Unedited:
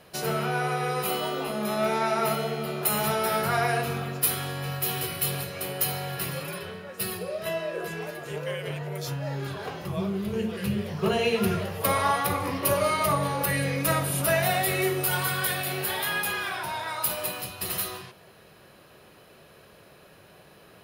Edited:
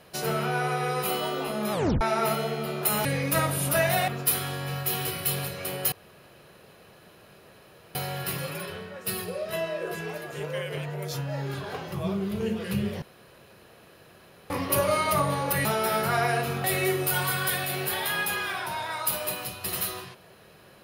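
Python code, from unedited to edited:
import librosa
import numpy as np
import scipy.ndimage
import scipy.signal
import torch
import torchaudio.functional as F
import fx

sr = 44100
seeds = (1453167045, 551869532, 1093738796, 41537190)

y = fx.edit(x, sr, fx.tape_stop(start_s=1.72, length_s=0.29),
    fx.swap(start_s=3.05, length_s=0.99, other_s=13.58, other_length_s=1.03),
    fx.insert_room_tone(at_s=5.88, length_s=2.03),
    fx.room_tone_fill(start_s=10.95, length_s=1.48), tone=tone)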